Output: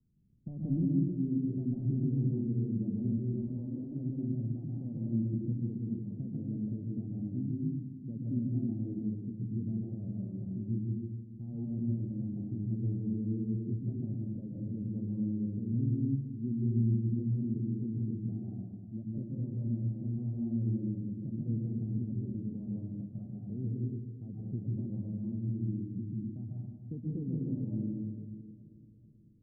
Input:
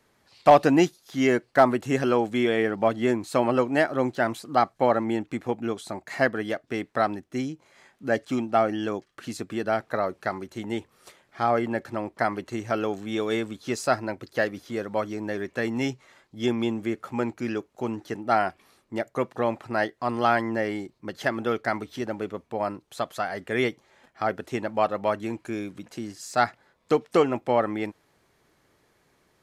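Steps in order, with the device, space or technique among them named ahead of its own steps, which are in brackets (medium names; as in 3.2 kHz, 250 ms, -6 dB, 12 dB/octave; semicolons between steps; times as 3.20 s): 3.18–3.83 s: RIAA curve recording; feedback echo behind a low-pass 435 ms, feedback 48%, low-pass 530 Hz, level -18.5 dB; club heard from the street (peak limiter -15.5 dBFS, peak gain reduction 9.5 dB; low-pass 200 Hz 24 dB/octave; reverberation RT60 1.3 s, pre-delay 118 ms, DRR -4 dB)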